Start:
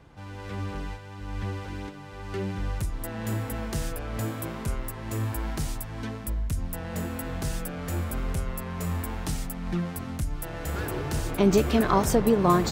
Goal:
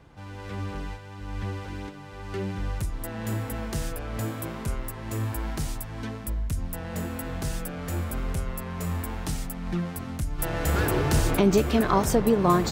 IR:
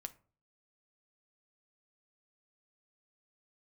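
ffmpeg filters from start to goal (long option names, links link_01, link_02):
-filter_complex "[0:a]asplit=3[link_01][link_02][link_03];[link_01]afade=type=out:start_time=10.38:duration=0.02[link_04];[link_02]acontrast=75,afade=type=in:start_time=10.38:duration=0.02,afade=type=out:start_time=11.39:duration=0.02[link_05];[link_03]afade=type=in:start_time=11.39:duration=0.02[link_06];[link_04][link_05][link_06]amix=inputs=3:normalize=0"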